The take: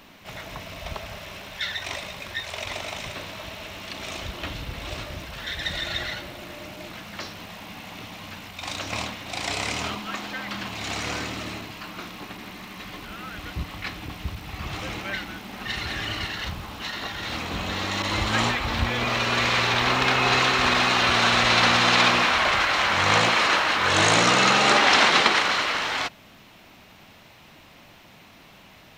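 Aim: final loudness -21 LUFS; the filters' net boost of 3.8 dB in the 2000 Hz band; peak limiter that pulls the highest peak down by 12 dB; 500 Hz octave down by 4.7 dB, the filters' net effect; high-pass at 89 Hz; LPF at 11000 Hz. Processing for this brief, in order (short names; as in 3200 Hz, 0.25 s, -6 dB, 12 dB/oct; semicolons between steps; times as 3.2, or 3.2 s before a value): HPF 89 Hz; LPF 11000 Hz; bell 500 Hz -6.5 dB; bell 2000 Hz +5 dB; gain +4 dB; limiter -10 dBFS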